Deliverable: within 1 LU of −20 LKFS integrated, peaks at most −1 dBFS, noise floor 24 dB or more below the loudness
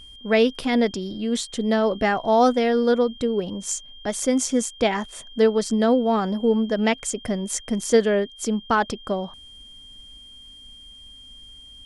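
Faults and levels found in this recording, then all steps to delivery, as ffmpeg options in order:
interfering tone 3,200 Hz; level of the tone −43 dBFS; integrated loudness −22.5 LKFS; sample peak −6.5 dBFS; target loudness −20.0 LKFS
→ -af "bandreject=frequency=3200:width=30"
-af "volume=2.5dB"

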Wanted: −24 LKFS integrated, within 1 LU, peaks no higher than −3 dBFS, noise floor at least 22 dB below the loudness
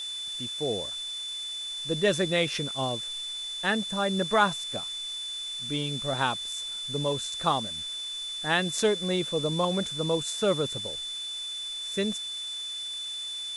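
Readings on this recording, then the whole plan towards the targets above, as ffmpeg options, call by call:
interfering tone 3,500 Hz; level of the tone −33 dBFS; background noise floor −36 dBFS; target noise floor −51 dBFS; integrated loudness −29.0 LKFS; sample peak −9.5 dBFS; target loudness −24.0 LKFS
→ -af "bandreject=frequency=3500:width=30"
-af "afftdn=noise_reduction=15:noise_floor=-36"
-af "volume=5dB"

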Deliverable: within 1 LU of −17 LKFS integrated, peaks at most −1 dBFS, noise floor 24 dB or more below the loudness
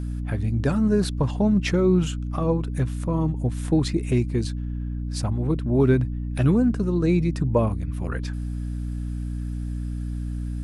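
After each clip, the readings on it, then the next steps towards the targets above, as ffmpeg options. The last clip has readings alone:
mains hum 60 Hz; hum harmonics up to 300 Hz; level of the hum −26 dBFS; integrated loudness −24.5 LKFS; sample peak −8.0 dBFS; target loudness −17.0 LKFS
→ -af "bandreject=frequency=60:width_type=h:width=6,bandreject=frequency=120:width_type=h:width=6,bandreject=frequency=180:width_type=h:width=6,bandreject=frequency=240:width_type=h:width=6,bandreject=frequency=300:width_type=h:width=6"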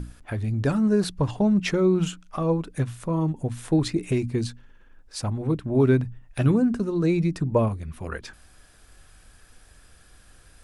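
mains hum none found; integrated loudness −24.5 LKFS; sample peak −9.0 dBFS; target loudness −17.0 LKFS
→ -af "volume=7.5dB"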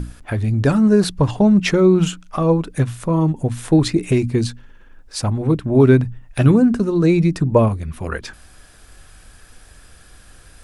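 integrated loudness −17.0 LKFS; sample peak −1.5 dBFS; background noise floor −46 dBFS

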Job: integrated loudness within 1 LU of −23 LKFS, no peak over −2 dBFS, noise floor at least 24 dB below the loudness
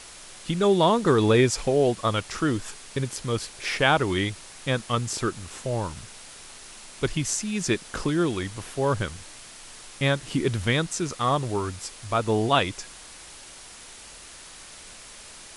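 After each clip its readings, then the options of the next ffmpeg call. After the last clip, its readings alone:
background noise floor −45 dBFS; target noise floor −49 dBFS; integrated loudness −25.0 LKFS; sample peak −5.5 dBFS; target loudness −23.0 LKFS
→ -af "afftdn=noise_reduction=6:noise_floor=-45"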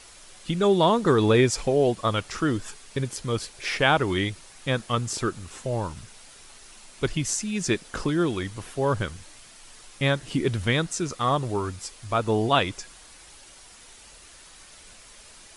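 background noise floor −49 dBFS; target noise floor −50 dBFS
→ -af "afftdn=noise_reduction=6:noise_floor=-49"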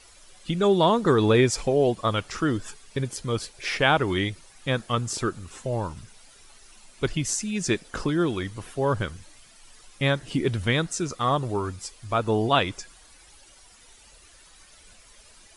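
background noise floor −53 dBFS; integrated loudness −25.5 LKFS; sample peak −5.5 dBFS; target loudness −23.0 LKFS
→ -af "volume=2.5dB"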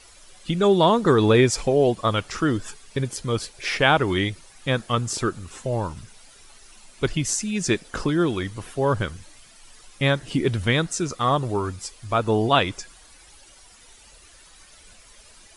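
integrated loudness −23.0 LKFS; sample peak −3.0 dBFS; background noise floor −51 dBFS

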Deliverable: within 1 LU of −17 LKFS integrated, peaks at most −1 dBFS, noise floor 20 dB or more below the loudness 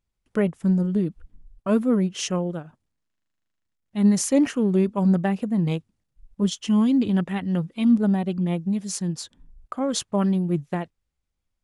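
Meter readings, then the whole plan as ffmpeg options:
integrated loudness −23.5 LKFS; sample peak −9.5 dBFS; target loudness −17.0 LKFS
→ -af "volume=6.5dB"

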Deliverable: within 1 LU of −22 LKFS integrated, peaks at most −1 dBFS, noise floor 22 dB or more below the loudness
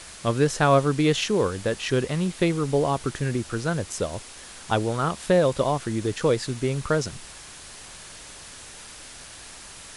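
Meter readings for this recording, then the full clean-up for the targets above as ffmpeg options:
background noise floor −43 dBFS; target noise floor −47 dBFS; integrated loudness −24.5 LKFS; sample peak −8.0 dBFS; target loudness −22.0 LKFS
→ -af "afftdn=noise_reduction=6:noise_floor=-43"
-af "volume=2.5dB"

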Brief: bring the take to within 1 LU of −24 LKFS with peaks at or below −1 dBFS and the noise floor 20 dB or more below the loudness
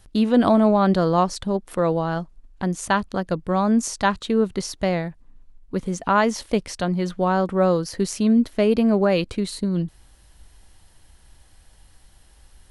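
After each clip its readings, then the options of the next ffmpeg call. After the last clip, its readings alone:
integrated loudness −21.5 LKFS; sample peak −5.0 dBFS; target loudness −24.0 LKFS
→ -af "volume=-2.5dB"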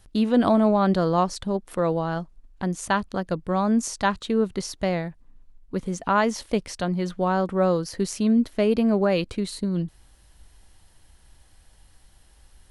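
integrated loudness −24.0 LKFS; sample peak −7.5 dBFS; background noise floor −56 dBFS

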